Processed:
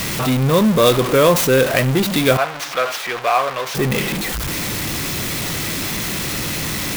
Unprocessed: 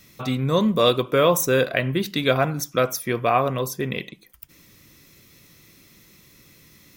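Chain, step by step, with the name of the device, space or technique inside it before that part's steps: early CD player with a faulty converter (zero-crossing step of -19 dBFS; clock jitter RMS 0.029 ms); 2.37–3.75 three-band isolator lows -21 dB, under 540 Hz, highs -12 dB, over 5100 Hz; gain +2.5 dB

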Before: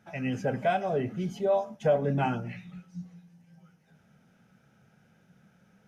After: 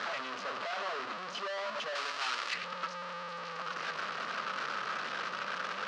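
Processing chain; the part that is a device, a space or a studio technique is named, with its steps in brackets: home computer beeper (infinite clipping; speaker cabinet 700–4500 Hz, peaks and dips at 800 Hz -7 dB, 1200 Hz +8 dB, 2200 Hz -4 dB, 3500 Hz -4 dB); 1.95–2.54 tilt +4 dB/oct

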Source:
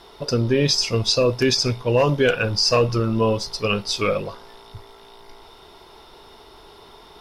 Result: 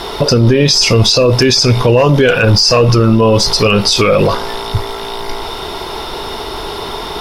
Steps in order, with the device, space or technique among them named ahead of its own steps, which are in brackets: loud club master (compressor 2.5:1, threshold -22 dBFS, peak gain reduction 6 dB; hard clip -14 dBFS, distortion -38 dB; maximiser +24.5 dB); gain -1 dB

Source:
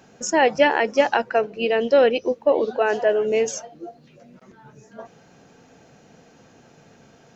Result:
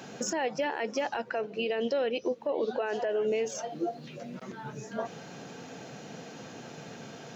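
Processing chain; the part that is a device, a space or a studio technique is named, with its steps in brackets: broadcast voice chain (HPF 110 Hz 24 dB/oct; de-esser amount 75%; compressor 4:1, threshold -34 dBFS, peak gain reduction 18.5 dB; bell 3600 Hz +3.5 dB 0.84 oct; limiter -28.5 dBFS, peak gain reduction 7.5 dB); gain +7 dB

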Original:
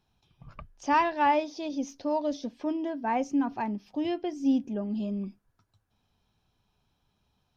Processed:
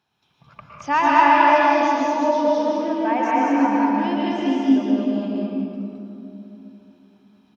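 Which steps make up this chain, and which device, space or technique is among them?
stadium PA (HPF 130 Hz 12 dB/oct; bell 1700 Hz +7.5 dB 2.5 oct; loudspeakers at several distances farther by 51 m -10 dB, 74 m -1 dB; reverb RT60 2.9 s, pre-delay 0.105 s, DRR -3.5 dB); gain -1.5 dB

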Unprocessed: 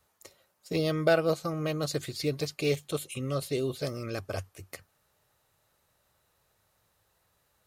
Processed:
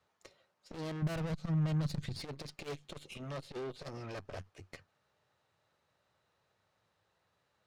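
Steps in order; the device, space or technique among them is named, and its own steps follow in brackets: valve radio (BPF 96–4500 Hz; tube stage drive 38 dB, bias 0.75; core saturation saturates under 160 Hz); 1.02–2.21 resonant low shelf 250 Hz +10 dB, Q 1.5; gain +1 dB

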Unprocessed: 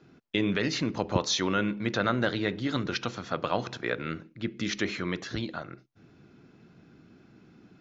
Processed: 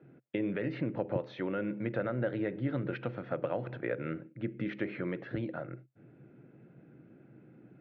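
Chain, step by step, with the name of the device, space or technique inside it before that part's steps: bass amplifier (compressor 5:1, threshold -28 dBFS, peak gain reduction 9 dB; speaker cabinet 76–2300 Hz, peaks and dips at 90 Hz -6 dB, 130 Hz +10 dB, 320 Hz +5 dB, 540 Hz +10 dB, 1100 Hz -8 dB); gain -4 dB

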